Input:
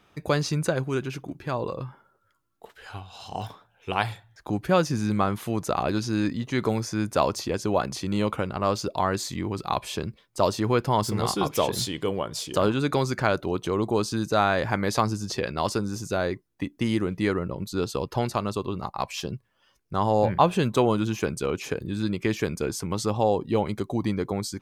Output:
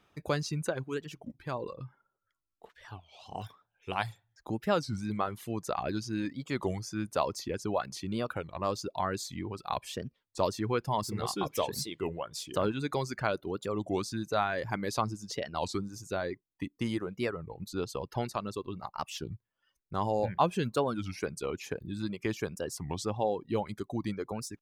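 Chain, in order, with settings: reverb removal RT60 1.1 s; 1.71–3.29 high shelf 5600 Hz -9 dB; record warp 33 1/3 rpm, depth 250 cents; gain -6.5 dB

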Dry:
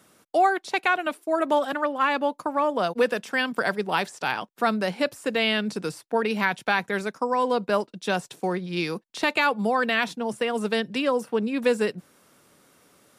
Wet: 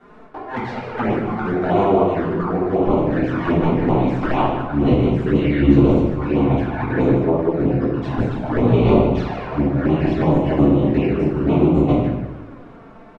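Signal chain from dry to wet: cycle switcher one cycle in 3, inverted; 4.85–5.78 bell 720 Hz -12.5 dB 0.96 oct; negative-ratio compressor -29 dBFS, ratio -0.5; LPF 1400 Hz 12 dB/oct; bell 64 Hz -3.5 dB 1.2 oct; shoebox room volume 250 m³, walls mixed, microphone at 3.4 m; envelope flanger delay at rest 5.3 ms, full sweep at -16 dBFS; echo 0.152 s -9.5 dB; warbling echo 0.116 s, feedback 75%, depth 149 cents, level -21 dB; gain +3.5 dB

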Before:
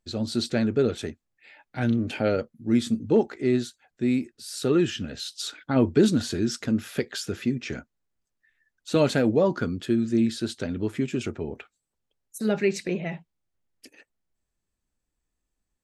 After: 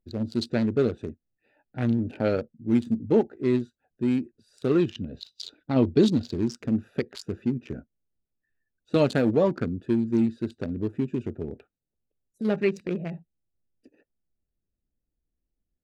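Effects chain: Wiener smoothing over 41 samples; 4.8–6.35 fifteen-band EQ 1600 Hz -6 dB, 4000 Hz +6 dB, 10000 Hz -9 dB

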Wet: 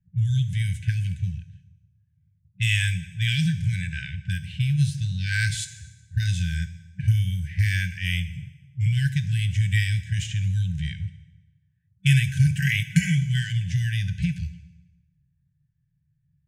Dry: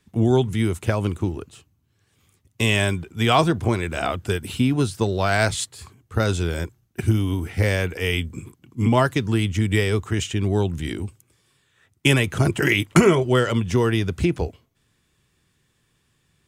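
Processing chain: FFT band-reject 190–1500 Hz; low-pass opened by the level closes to 500 Hz, open at -21.5 dBFS; harmonic-percussive split harmonic +8 dB; on a send: bell 6400 Hz +9.5 dB 0.37 oct + reverb RT60 1.1 s, pre-delay 3 ms, DRR 11 dB; on the sum: gain -7.5 dB

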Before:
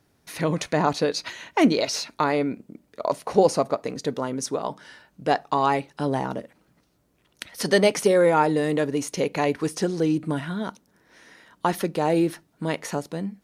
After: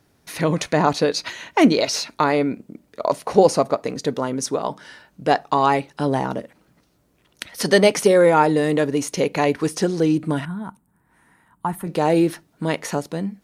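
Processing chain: 10.45–11.87 EQ curve 150 Hz 0 dB, 550 Hz -17 dB, 880 Hz -3 dB, 5800 Hz -26 dB, 8200 Hz -5 dB; gain +4 dB

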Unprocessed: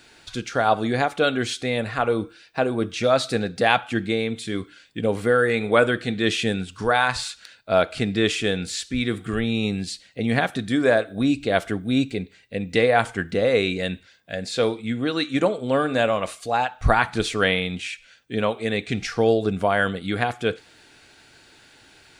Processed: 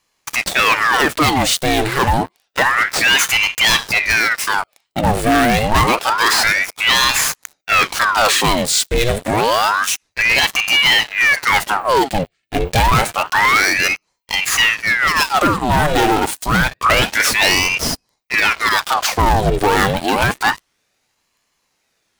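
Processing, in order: sample leveller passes 5; high shelf 8500 Hz +11 dB; ring modulator with a swept carrier 1400 Hz, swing 85%, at 0.28 Hz; gain -4 dB

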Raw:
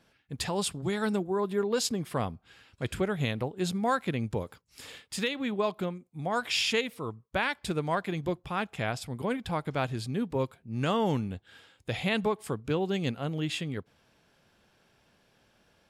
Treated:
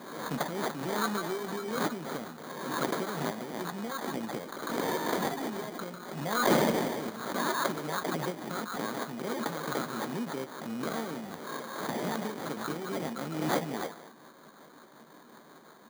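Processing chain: bin magnitudes rounded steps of 15 dB; compressor 4:1, threshold -41 dBFS, peak gain reduction 15 dB; rotary speaker horn 0.6 Hz, later 5.5 Hz, at 12.1; short-mantissa float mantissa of 2-bit; band shelf 3100 Hz +15.5 dB 2.7 oct; doubler 13 ms -10.5 dB; delay with a stepping band-pass 0.146 s, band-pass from 1300 Hz, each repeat 1.4 oct, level -5 dB; sample-rate reducer 2700 Hz, jitter 0%; HPF 190 Hz 24 dB/oct; low shelf 460 Hz +8 dB; backwards sustainer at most 45 dB/s; gain +1.5 dB

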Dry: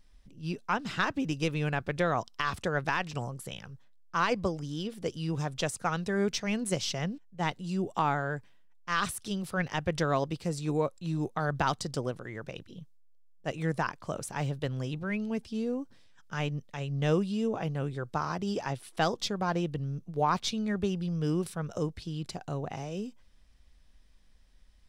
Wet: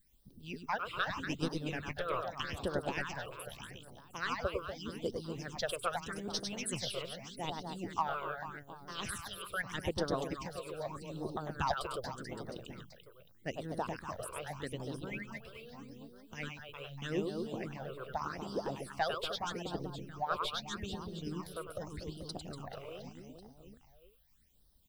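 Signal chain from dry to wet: reverse bouncing-ball echo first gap 0.1 s, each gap 1.4×, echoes 5; added noise violet -66 dBFS; harmonic-percussive split harmonic -16 dB; phaser stages 8, 0.82 Hz, lowest notch 230–2400 Hz; gain -1 dB

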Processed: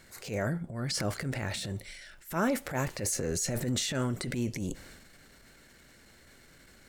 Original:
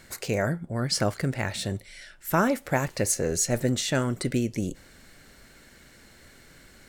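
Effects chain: transient shaper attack -10 dB, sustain +7 dB; 1.65–2.39 crackle 460/s -54 dBFS; gain -4.5 dB

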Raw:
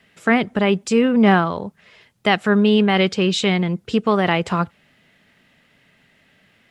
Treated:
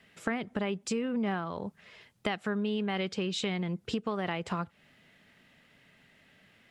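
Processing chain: compressor 6:1, threshold -25 dBFS, peak gain reduction 14 dB; gain -4.5 dB

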